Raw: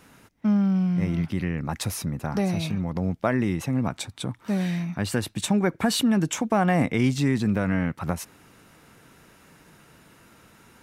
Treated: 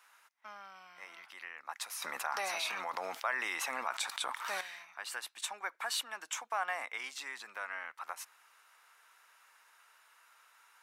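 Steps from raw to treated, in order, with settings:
four-pole ladder high-pass 820 Hz, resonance 30%
0:02.02–0:04.61: envelope flattener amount 70%
level −2 dB

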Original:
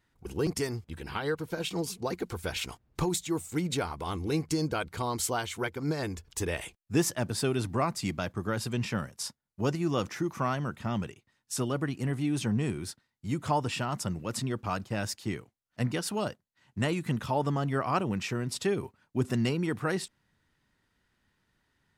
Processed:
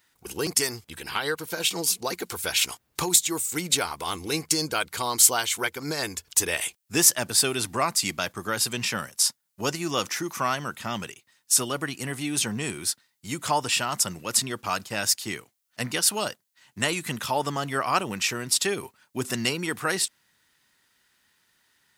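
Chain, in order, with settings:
spectral tilt +3.5 dB per octave
level +5 dB

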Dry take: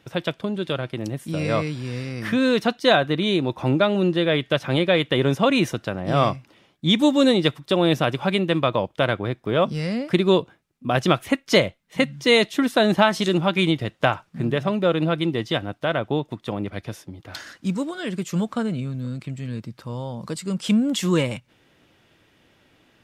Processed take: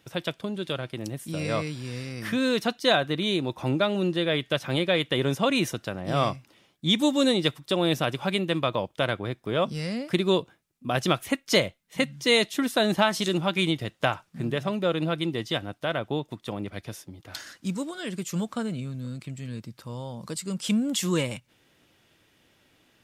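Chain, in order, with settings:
high-shelf EQ 4,700 Hz +9.5 dB
level −5.5 dB

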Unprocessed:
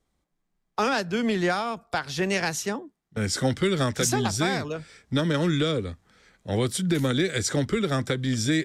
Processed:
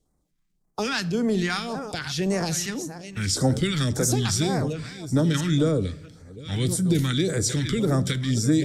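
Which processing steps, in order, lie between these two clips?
delay that plays each chunk backwards 676 ms, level −13.5 dB
transient designer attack 0 dB, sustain +6 dB
all-pass phaser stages 2, 1.8 Hz, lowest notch 490–3,000 Hz
rectangular room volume 2,200 cubic metres, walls furnished, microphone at 0.46 metres
level +2 dB

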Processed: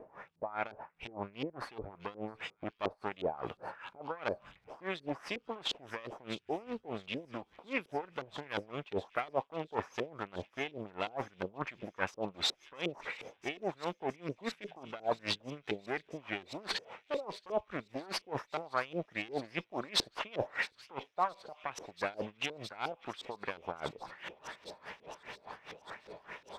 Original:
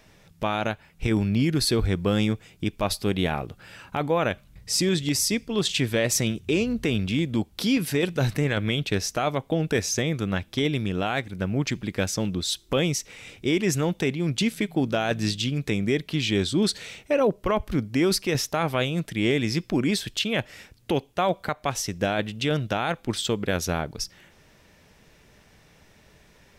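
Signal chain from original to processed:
one-sided soft clipper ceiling −29.5 dBFS
octave-band graphic EQ 500/1,000/4,000/8,000 Hz +3/+8/−8/−5 dB
reversed playback
downward compressor 12 to 1, threshold −38 dBFS, peak gain reduction 21.5 dB
reversed playback
RIAA equalisation recording
auto-filter low-pass saw up 2.8 Hz 390–4,200 Hz
on a send: delay with a high-pass on its return 672 ms, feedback 85%, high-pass 3,500 Hz, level −13 dB
on the sum: tremolo with a sine in dB 4.9 Hz, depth 20 dB
level +9.5 dB

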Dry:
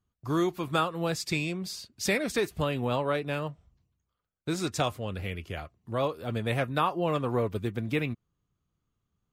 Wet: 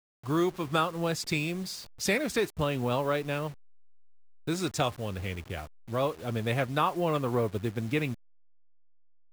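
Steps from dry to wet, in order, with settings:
hold until the input has moved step −43.5 dBFS

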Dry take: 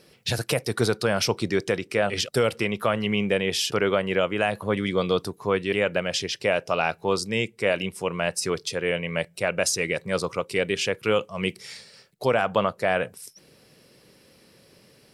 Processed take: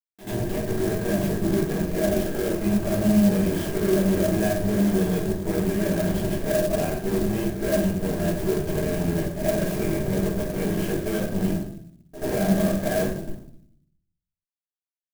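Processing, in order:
adaptive Wiener filter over 41 samples
first-order pre-emphasis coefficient 0.9
noise gate with hold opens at −59 dBFS
parametric band 3,300 Hz +6.5 dB 0.32 octaves
in parallel at −1 dB: compressor whose output falls as the input rises −44 dBFS, ratio −0.5
on the sum: brickwall limiter −24 dBFS, peak gain reduction 9.5 dB
output level in coarse steps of 13 dB
comparator with hysteresis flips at −52.5 dBFS
hollow resonant body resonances 210/340/620/1,600 Hz, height 17 dB, ringing for 30 ms
on a send: backwards echo 83 ms −12 dB
on the sum: rectangular room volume 100 cubic metres, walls mixed, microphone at 1.7 metres
converter with an unsteady clock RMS 0.057 ms

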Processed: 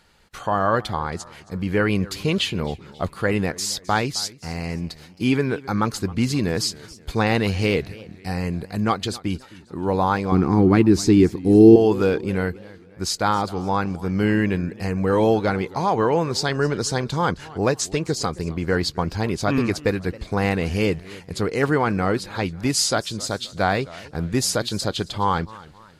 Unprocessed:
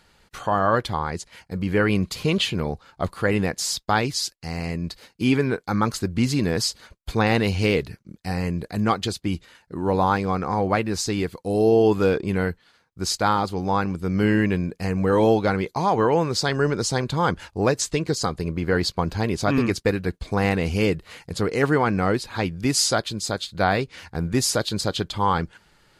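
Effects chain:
0:10.32–0:11.76: low shelf with overshoot 440 Hz +8 dB, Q 3
feedback echo with a swinging delay time 267 ms, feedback 41%, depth 172 cents, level −20 dB

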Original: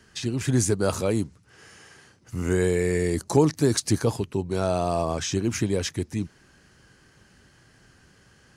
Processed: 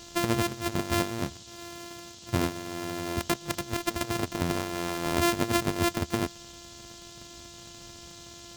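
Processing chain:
samples sorted by size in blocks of 128 samples
compressor whose output falls as the input rises −29 dBFS, ratio −0.5
noise in a band 2,900–7,400 Hz −51 dBFS
level +1 dB

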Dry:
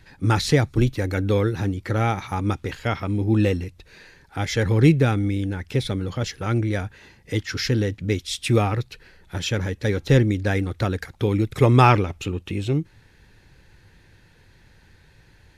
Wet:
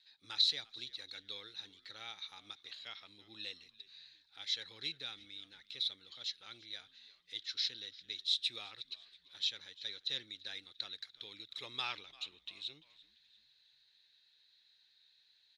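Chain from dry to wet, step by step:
resonant band-pass 3,900 Hz, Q 12
echo with shifted repeats 343 ms, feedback 46%, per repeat −90 Hz, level −21 dB
level +4.5 dB

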